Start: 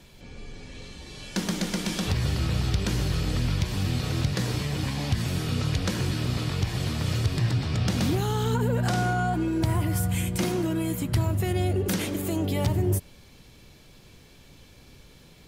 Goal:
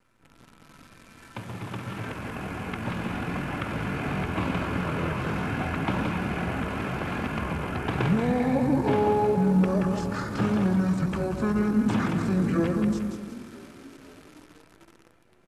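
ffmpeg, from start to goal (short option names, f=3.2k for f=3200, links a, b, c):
-filter_complex "[0:a]acrossover=split=190|3000[a][b][c];[a]acompressor=threshold=-36dB:ratio=10[d];[d][b][c]amix=inputs=3:normalize=0,acrossover=split=190 4000:gain=0.178 1 0.112[e][f][g];[e][f][g]amix=inputs=3:normalize=0,bandreject=f=3.3k:w=9.4,asplit=2[h][i];[i]aecho=0:1:179|358|537|716|895:0.501|0.21|0.0884|0.0371|0.0156[j];[h][j]amix=inputs=2:normalize=0,dynaudnorm=f=310:g=17:m=13dB,asplit=2[k][l];[l]asplit=5[m][n][o][p][q];[m]adelay=496,afreqshift=54,volume=-20dB[r];[n]adelay=992,afreqshift=108,volume=-24.6dB[s];[o]adelay=1488,afreqshift=162,volume=-29.2dB[t];[p]adelay=1984,afreqshift=216,volume=-33.7dB[u];[q]adelay=2480,afreqshift=270,volume=-38.3dB[v];[r][s][t][u][v]amix=inputs=5:normalize=0[w];[k][w]amix=inputs=2:normalize=0,acrusher=bits=8:dc=4:mix=0:aa=0.000001,asetrate=25476,aresample=44100,atempo=1.73107,bandreject=f=45.92:t=h:w=4,bandreject=f=91.84:t=h:w=4,bandreject=f=137.76:t=h:w=4,volume=-6dB"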